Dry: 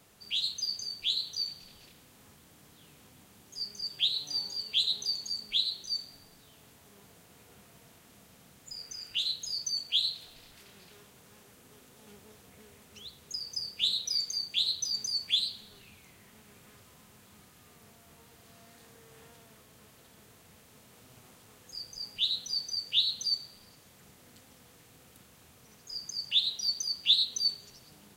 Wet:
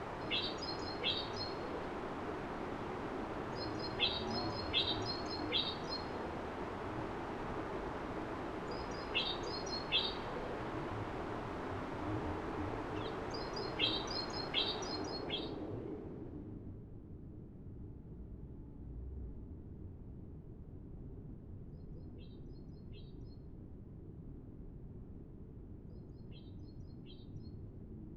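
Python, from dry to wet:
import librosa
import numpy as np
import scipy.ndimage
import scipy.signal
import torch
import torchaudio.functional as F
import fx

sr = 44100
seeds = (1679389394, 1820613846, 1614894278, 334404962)

y = fx.band_invert(x, sr, width_hz=500)
y = fx.quant_dither(y, sr, seeds[0], bits=8, dither='triangular')
y = fx.filter_sweep_lowpass(y, sr, from_hz=1000.0, to_hz=160.0, start_s=14.84, end_s=16.83, q=0.85)
y = F.gain(torch.from_numpy(y), 15.0).numpy()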